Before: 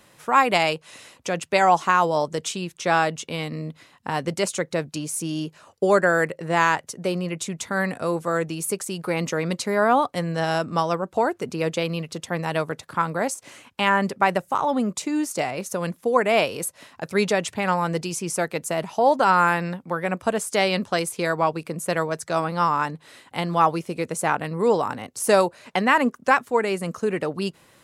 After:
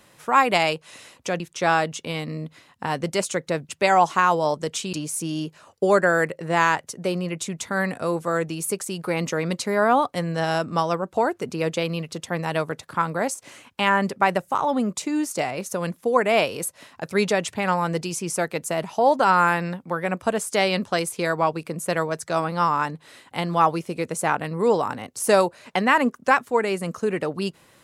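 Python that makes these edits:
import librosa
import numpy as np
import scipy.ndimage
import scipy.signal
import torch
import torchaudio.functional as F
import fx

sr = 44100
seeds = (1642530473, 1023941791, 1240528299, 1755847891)

y = fx.edit(x, sr, fx.move(start_s=1.4, length_s=1.24, to_s=4.93), tone=tone)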